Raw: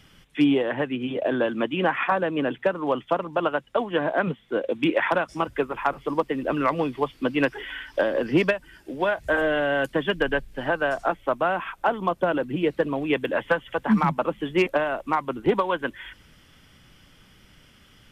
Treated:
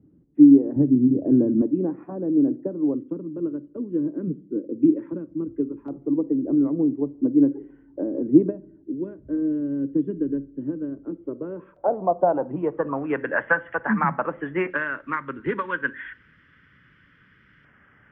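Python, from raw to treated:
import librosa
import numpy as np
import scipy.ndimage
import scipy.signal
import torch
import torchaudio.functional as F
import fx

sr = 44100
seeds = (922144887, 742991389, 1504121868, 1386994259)

y = scipy.signal.sosfilt(scipy.signal.butter(2, 72.0, 'highpass', fs=sr, output='sos'), x)
y = fx.room_shoebox(y, sr, seeds[0], volume_m3=700.0, walls='furnished', distance_m=0.33)
y = fx.filter_sweep_lowpass(y, sr, from_hz=310.0, to_hz=1700.0, start_s=11.1, end_s=13.34, q=3.8)
y = fx.bass_treble(y, sr, bass_db=13, treble_db=5, at=(0.76, 1.62))
y = fx.filter_lfo_notch(y, sr, shape='square', hz=0.17, low_hz=730.0, high_hz=4100.0, q=0.82)
y = y * librosa.db_to_amplitude(-3.0)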